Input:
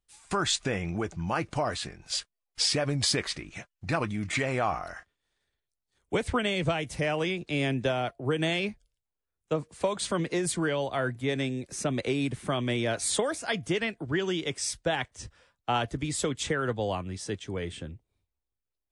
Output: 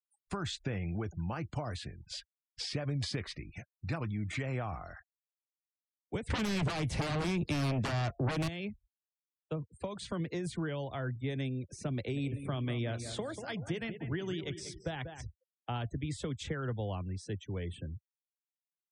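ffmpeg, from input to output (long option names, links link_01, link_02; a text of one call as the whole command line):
ffmpeg -i in.wav -filter_complex "[0:a]asettb=1/sr,asplit=3[link_01][link_02][link_03];[link_01]atrim=end=6.304[link_04];[link_02]atrim=start=6.3:end=8.48,asetpts=PTS-STARTPTS,afade=type=in:duration=0.004:curve=qsin,afade=type=out:start_time=2.176:duration=0.004:curve=qsin,aeval=exprs='0.188*sin(PI/2*5.01*val(0)/0.188)':channel_layout=same[link_05];[link_03]atrim=start=8.476[link_06];[link_04][link_05]acrossfade=duration=0.004:curve1=hsin:curve2=qsin[link_07];[link_07][link_06]acrossfade=duration=0.004:curve1=qsin:curve2=hsin,asettb=1/sr,asplit=3[link_08][link_09][link_10];[link_08]atrim=end=11.954[link_11];[link_09]atrim=start=11.95:end=15.23,asetpts=PTS-STARTPTS,afade=type=in:duration=0.004:curve=qsin,afade=type=out:start_time=3.276:duration=0.004:curve=qsin,asplit=2[link_12][link_13];[link_13]adelay=190,lowpass=frequency=3000:poles=1,volume=-11dB,asplit=2[link_14][link_15];[link_15]adelay=190,lowpass=frequency=3000:poles=1,volume=0.48,asplit=2[link_16][link_17];[link_17]adelay=190,lowpass=frequency=3000:poles=1,volume=0.48,asplit=2[link_18][link_19];[link_19]adelay=190,lowpass=frequency=3000:poles=1,volume=0.48,asplit=2[link_20][link_21];[link_21]adelay=190,lowpass=frequency=3000:poles=1,volume=0.48[link_22];[link_12][link_14][link_16][link_18][link_20][link_22]amix=inputs=6:normalize=0,atrim=end_sample=144648[link_23];[link_10]atrim=start=15.226[link_24];[link_11][link_23]acrossfade=duration=0.004:curve1=hsin:curve2=qsin[link_25];[link_25][link_24]acrossfade=duration=0.004:curve1=qsin:curve2=hsin,afftfilt=real='re*gte(hypot(re,im),0.00708)':imag='im*gte(hypot(re,im),0.00708)':win_size=1024:overlap=0.75,equalizer=frequency=83:width_type=o:width=2:gain=12,acrossover=split=120|240|5300[link_26][link_27][link_28][link_29];[link_26]acompressor=threshold=-33dB:ratio=4[link_30];[link_27]acompressor=threshold=-28dB:ratio=4[link_31];[link_28]acompressor=threshold=-28dB:ratio=4[link_32];[link_29]acompressor=threshold=-46dB:ratio=4[link_33];[link_30][link_31][link_32][link_33]amix=inputs=4:normalize=0,volume=-8.5dB" out.wav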